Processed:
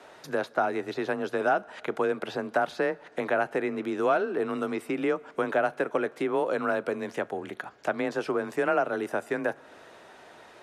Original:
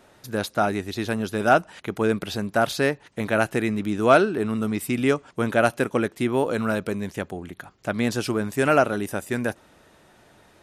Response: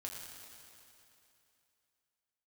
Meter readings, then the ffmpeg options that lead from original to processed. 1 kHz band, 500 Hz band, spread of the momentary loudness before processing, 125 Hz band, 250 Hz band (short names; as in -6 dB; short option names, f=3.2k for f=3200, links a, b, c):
-4.5 dB, -4.0 dB, 11 LU, -15.5 dB, -8.0 dB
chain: -filter_complex "[0:a]acrossover=split=210|1900[a][b][c];[a]acompressor=threshold=-35dB:ratio=4[d];[b]acompressor=threshold=-23dB:ratio=4[e];[c]acompressor=threshold=-47dB:ratio=4[f];[d][e][f]amix=inputs=3:normalize=0,bass=f=250:g=-14,treble=f=4k:g=2,afreqshift=25,asplit=2[g][h];[h]acompressor=threshold=-39dB:ratio=6,volume=0dB[i];[g][i]amix=inputs=2:normalize=0,aemphasis=mode=reproduction:type=50fm,asplit=2[j][k];[1:a]atrim=start_sample=2205,adelay=36[l];[k][l]afir=irnorm=-1:irlink=0,volume=-20dB[m];[j][m]amix=inputs=2:normalize=0"